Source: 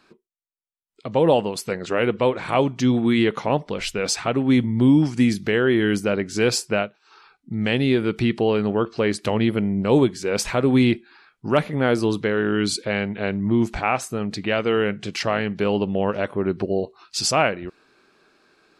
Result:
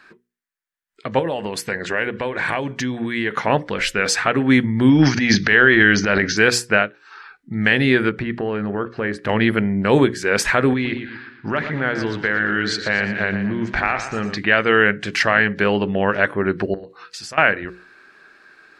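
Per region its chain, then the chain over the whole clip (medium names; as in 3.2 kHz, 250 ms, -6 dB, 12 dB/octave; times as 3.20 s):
1.19–3.31 s: band-stop 1.3 kHz, Q 7.1 + compression, threshold -23 dBFS
4.89–6.37 s: Chebyshev low-pass 6.3 kHz, order 6 + peaking EQ 4.4 kHz +5 dB 1.3 oct + transient shaper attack -7 dB, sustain +10 dB
8.09–9.29 s: low-pass 1.2 kHz 6 dB/octave + compression, threshold -21 dBFS
10.73–14.38 s: low-pass 5.9 kHz 24 dB/octave + compression 10:1, threshold -21 dBFS + modulated delay 118 ms, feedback 46%, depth 95 cents, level -9.5 dB
16.74–17.38 s: hum notches 60/120/180/240/300/360/420/480 Hz + compression 12:1, threshold -34 dBFS
whole clip: peaking EQ 1.7 kHz +14.5 dB 0.72 oct; hum notches 60/120/180/240/300/360/420/480/540 Hz; loudness maximiser +3.5 dB; trim -1 dB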